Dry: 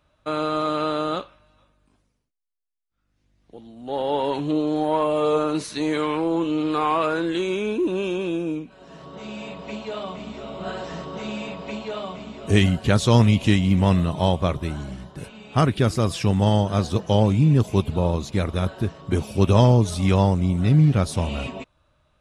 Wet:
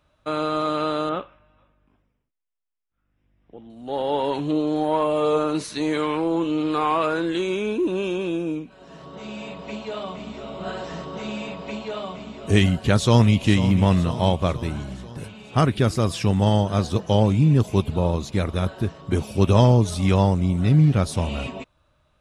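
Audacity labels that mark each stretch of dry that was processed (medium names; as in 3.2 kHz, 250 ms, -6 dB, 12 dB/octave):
1.090000	3.700000	Savitzky-Golay filter over 25 samples
12.980000	13.470000	echo throw 490 ms, feedback 60%, level -12 dB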